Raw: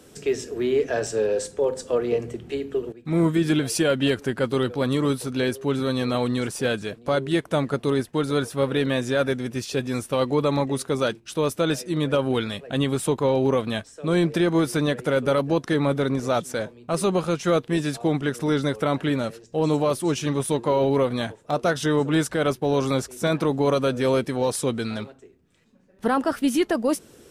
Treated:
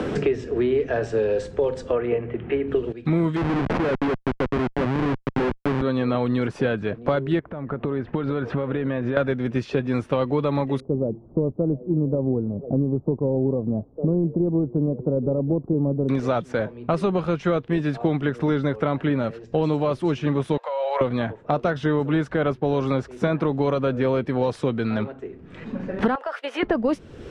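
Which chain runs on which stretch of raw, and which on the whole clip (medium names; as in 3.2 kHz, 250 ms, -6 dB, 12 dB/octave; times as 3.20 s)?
1.92–2.68 s: low-pass 2.5 kHz 24 dB/octave + tilt EQ +2 dB/octave
3.36–5.82 s: treble shelf 9.7 kHz -4 dB + Schmitt trigger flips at -22.5 dBFS
7.39–9.17 s: low-pass 2.2 kHz + compression 16:1, threshold -34 dBFS
10.80–16.09 s: zero-crossing glitches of -25 dBFS + Gaussian low-pass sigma 16 samples
20.57–21.01 s: Chebyshev high-pass 510 Hz, order 6 + compression, threshold -28 dBFS
26.15–26.63 s: steep high-pass 490 Hz + expander -38 dBFS + compression, threshold -26 dBFS
whole clip: low-pass 2.4 kHz 12 dB/octave; bass shelf 130 Hz +4 dB; three bands compressed up and down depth 100%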